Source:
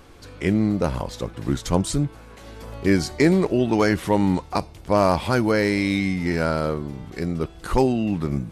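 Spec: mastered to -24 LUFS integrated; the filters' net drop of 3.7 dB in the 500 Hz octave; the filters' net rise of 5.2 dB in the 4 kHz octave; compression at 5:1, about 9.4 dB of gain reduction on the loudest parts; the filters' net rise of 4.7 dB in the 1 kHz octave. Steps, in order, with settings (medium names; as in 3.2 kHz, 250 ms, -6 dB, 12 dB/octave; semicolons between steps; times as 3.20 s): peaking EQ 500 Hz -7 dB; peaking EQ 1 kHz +7.5 dB; peaking EQ 4 kHz +6 dB; compression 5:1, threshold -24 dBFS; trim +5.5 dB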